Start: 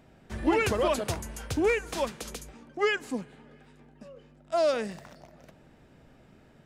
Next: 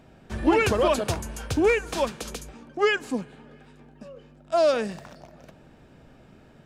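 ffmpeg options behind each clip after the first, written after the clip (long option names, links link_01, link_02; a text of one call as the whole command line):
ffmpeg -i in.wav -af "highshelf=frequency=8900:gain=-4.5,bandreject=frequency=2000:width=13,volume=4.5dB" out.wav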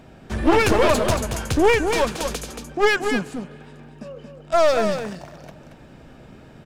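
ffmpeg -i in.wav -af "aeval=exprs='clip(val(0),-1,0.0422)':channel_layout=same,aecho=1:1:228:0.447,volume=6.5dB" out.wav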